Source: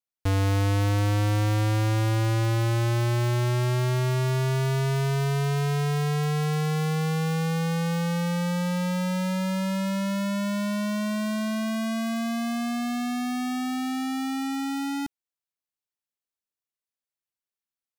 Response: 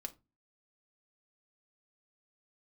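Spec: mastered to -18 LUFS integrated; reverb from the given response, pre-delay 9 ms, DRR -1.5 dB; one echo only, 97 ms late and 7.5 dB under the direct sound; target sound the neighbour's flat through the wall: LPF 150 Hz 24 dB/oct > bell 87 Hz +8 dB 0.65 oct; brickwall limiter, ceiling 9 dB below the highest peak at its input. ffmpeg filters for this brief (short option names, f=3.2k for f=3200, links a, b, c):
-filter_complex "[0:a]alimiter=level_in=7dB:limit=-24dB:level=0:latency=1,volume=-7dB,aecho=1:1:97:0.422,asplit=2[a][b];[1:a]atrim=start_sample=2205,adelay=9[c];[b][c]afir=irnorm=-1:irlink=0,volume=4.5dB[d];[a][d]amix=inputs=2:normalize=0,lowpass=f=150:w=0.5412,lowpass=f=150:w=1.3066,equalizer=f=87:t=o:w=0.65:g=8,volume=11dB"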